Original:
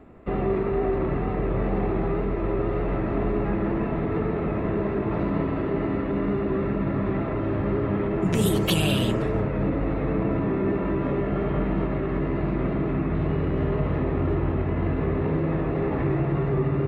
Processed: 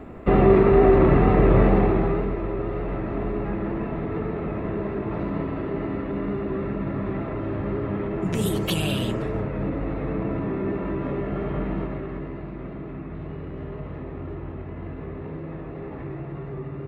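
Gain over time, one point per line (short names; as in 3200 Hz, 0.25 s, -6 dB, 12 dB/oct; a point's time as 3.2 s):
1.59 s +9 dB
2.5 s -2.5 dB
11.74 s -2.5 dB
12.48 s -10 dB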